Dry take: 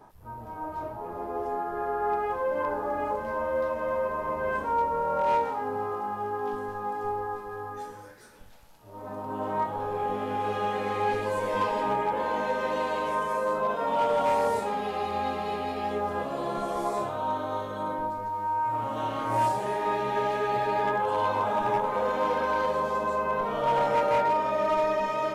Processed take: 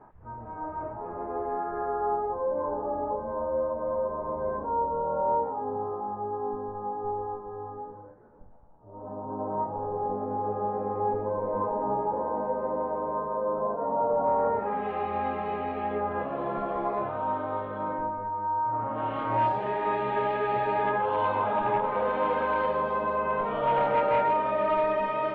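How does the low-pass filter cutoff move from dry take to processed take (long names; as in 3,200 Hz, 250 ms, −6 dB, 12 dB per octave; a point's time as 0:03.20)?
low-pass filter 24 dB per octave
0:01.69 1,900 Hz
0:02.30 1,000 Hz
0:14.18 1,000 Hz
0:14.90 2,400 Hz
0:17.92 2,400 Hz
0:18.62 1,300 Hz
0:19.20 3,100 Hz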